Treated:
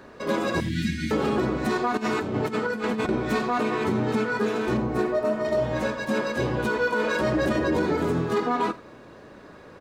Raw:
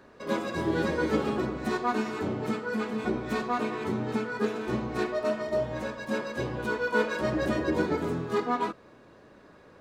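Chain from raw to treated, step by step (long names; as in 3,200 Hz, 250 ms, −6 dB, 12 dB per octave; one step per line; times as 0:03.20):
0:00.60–0:01.11: elliptic band-stop filter 240–2,000 Hz, stop band 50 dB
0:01.97–0:03.09: compressor whose output falls as the input rises −33 dBFS, ratio −0.5
0:04.77–0:05.45: parametric band 3,800 Hz −9 dB 2.7 octaves
brickwall limiter −23 dBFS, peak gain reduction 10 dB
single-tap delay 85 ms −19 dB
level +7.5 dB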